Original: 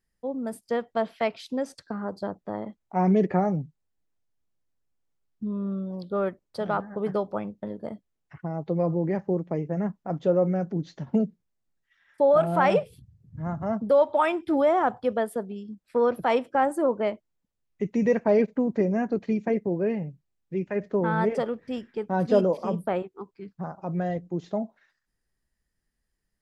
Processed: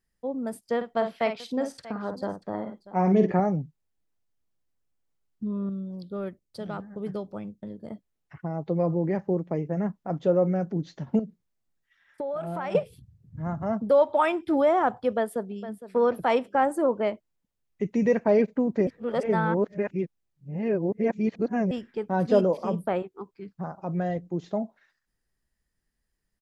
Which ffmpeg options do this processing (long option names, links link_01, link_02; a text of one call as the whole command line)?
ffmpeg -i in.wav -filter_complex "[0:a]asettb=1/sr,asplit=3[link_01][link_02][link_03];[link_01]atrim=end=0.764[link_04];[link_02]atrim=start=0.76:end=3.4,asetpts=PTS-STARTPTS,afade=type=in:duration=0.004:curve=qsin,afade=type=out:start_time=2.636:duration=0.004:curve=qsin,aecho=1:1:51|638:0.398|0.133,atrim=end_sample=116424[link_05];[link_03]atrim=start=3.396[link_06];[link_04][link_05]acrossfade=duration=0.004:curve1=hsin:curve2=qsin[link_07];[link_07][link_06]acrossfade=duration=0.004:curve1=qsin:curve2=hsin,asettb=1/sr,asplit=3[link_08][link_09][link_10];[link_08]atrim=end=5.694[link_11];[link_09]atrim=start=5.69:end=7.9,asetpts=PTS-STARTPTS,afade=type=in:duration=0.004:curve=qsin,afade=type=out:start_time=2.206:duration=0.004:curve=qsin,equalizer=frequency=960:width=0.46:gain=-11.5[link_12];[link_10]atrim=start=7.896[link_13];[link_11][link_12]acrossfade=duration=0.004:curve1=hsin:curve2=qsin[link_14];[link_14][link_13]acrossfade=duration=0.004:curve1=qsin:curve2=hsin,asettb=1/sr,asplit=3[link_15][link_16][link_17];[link_15]atrim=end=11.194[link_18];[link_16]atrim=start=11.19:end=12.75,asetpts=PTS-STARTPTS,afade=type=in:duration=0.004:curve=qsin,afade=type=out:start_time=1.556:duration=0.004:curve=qsin,acompressor=threshold=-29dB:ratio=6:attack=3.2:release=140:knee=1:detection=peak[link_19];[link_17]atrim=start=12.746[link_20];[link_18][link_19]acrossfade=duration=0.004:curve1=hsin:curve2=qsin[link_21];[link_21][link_20]acrossfade=duration=0.004:curve1=qsin:curve2=hsin,asplit=2[link_22][link_23];[link_23]afade=type=in:start_time=15.14:duration=0.01,afade=type=out:start_time=15.83:duration=0.01,aecho=0:1:460|920|1380:0.211349|0.0634047|0.0190214[link_24];[link_22][link_24]amix=inputs=2:normalize=0,asplit=3[link_25][link_26][link_27];[link_25]atrim=end=18.872[link_28];[link_26]atrim=start=18.868:end=21.712,asetpts=PTS-STARTPTS,areverse[link_29];[link_27]atrim=start=21.708[link_30];[link_28][link_29]acrossfade=duration=0.004:curve1=hsin:curve2=hsin[link_31];[link_31][link_30]acrossfade=duration=0.004:curve1=hsin:curve2=hsin" out.wav